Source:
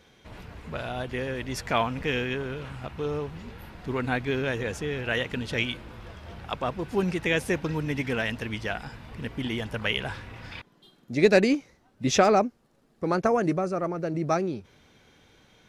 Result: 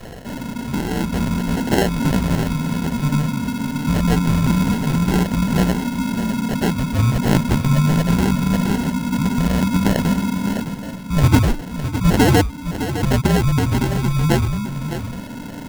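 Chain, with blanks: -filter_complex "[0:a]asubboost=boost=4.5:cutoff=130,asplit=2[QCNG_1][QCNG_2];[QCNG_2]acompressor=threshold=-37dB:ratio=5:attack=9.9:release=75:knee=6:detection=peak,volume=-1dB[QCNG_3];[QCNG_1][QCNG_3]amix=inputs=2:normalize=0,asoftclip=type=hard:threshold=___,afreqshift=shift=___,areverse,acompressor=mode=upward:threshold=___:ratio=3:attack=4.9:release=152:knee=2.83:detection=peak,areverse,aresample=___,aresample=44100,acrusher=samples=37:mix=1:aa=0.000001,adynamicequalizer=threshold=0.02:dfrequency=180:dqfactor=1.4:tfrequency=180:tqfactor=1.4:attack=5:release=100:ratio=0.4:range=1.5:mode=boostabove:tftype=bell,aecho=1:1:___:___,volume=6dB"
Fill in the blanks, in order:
-15dB, -300, -29dB, 16000, 609, 0.316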